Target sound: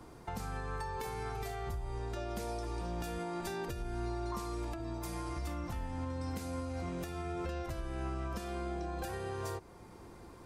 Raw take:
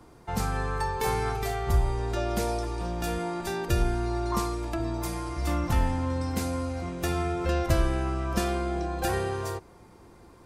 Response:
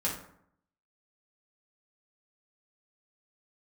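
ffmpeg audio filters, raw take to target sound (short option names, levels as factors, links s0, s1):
-af "acompressor=threshold=0.0251:ratio=4,alimiter=level_in=1.88:limit=0.0631:level=0:latency=1:release=403,volume=0.531"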